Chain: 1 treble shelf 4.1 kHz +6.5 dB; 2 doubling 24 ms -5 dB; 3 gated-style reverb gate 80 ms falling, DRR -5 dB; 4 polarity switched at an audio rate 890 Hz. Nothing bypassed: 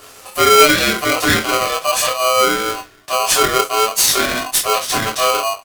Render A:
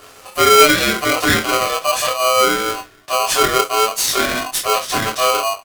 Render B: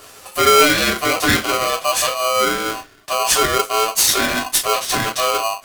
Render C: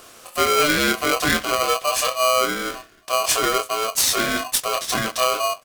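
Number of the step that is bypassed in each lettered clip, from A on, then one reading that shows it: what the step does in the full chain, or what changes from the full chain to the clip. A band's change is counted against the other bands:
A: 1, 8 kHz band -2.0 dB; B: 2, crest factor change +1.5 dB; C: 3, momentary loudness spread change -3 LU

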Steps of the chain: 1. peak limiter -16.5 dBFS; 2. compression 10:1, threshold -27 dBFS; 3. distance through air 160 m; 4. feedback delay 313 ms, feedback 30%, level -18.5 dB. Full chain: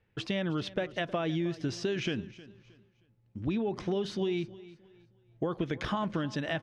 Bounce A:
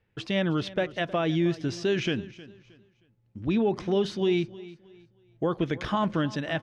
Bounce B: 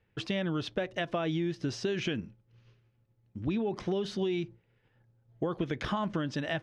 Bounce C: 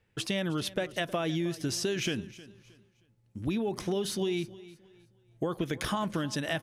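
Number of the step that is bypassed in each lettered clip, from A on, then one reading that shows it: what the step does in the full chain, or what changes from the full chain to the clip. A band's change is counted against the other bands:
2, mean gain reduction 3.5 dB; 4, momentary loudness spread change -4 LU; 3, 8 kHz band +11.5 dB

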